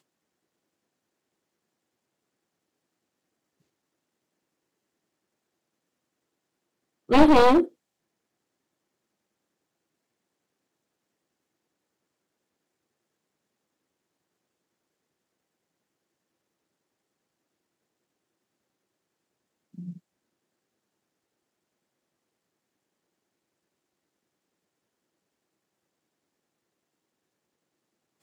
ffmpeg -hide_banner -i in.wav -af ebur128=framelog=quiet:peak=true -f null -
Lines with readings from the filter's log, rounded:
Integrated loudness:
  I:         -18.6 LUFS
  Threshold: -31.6 LUFS
Loudness range:
  LRA:         4.3 LU
  Threshold: -47.8 LUFS
  LRA low:   -28.6 LUFS
  LRA high:  -24.3 LUFS
True peak:
  Peak:       -2.8 dBFS